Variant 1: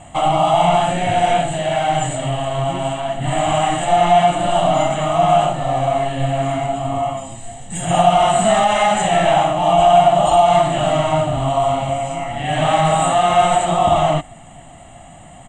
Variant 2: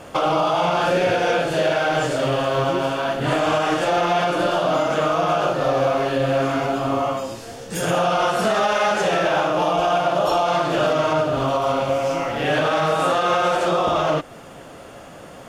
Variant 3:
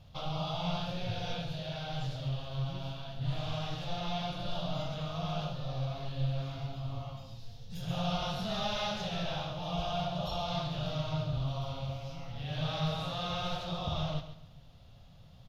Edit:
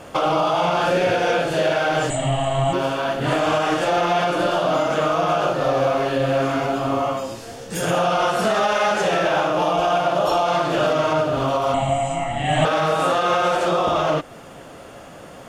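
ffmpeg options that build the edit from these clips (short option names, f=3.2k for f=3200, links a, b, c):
-filter_complex "[0:a]asplit=2[a][b];[1:a]asplit=3[c][d][e];[c]atrim=end=2.102[f];[a]atrim=start=2.098:end=2.732[g];[d]atrim=start=2.728:end=11.742[h];[b]atrim=start=11.738:end=12.652[i];[e]atrim=start=12.648[j];[f][g]acrossfade=d=0.004:c1=hsin:c2=hsin[k];[k][h]acrossfade=d=0.004:c1=hsin:c2=hsin[l];[l][i]acrossfade=d=0.004:c1=hsin:c2=hsin[m];[m][j]acrossfade=d=0.004:c1=hsin:c2=hsin"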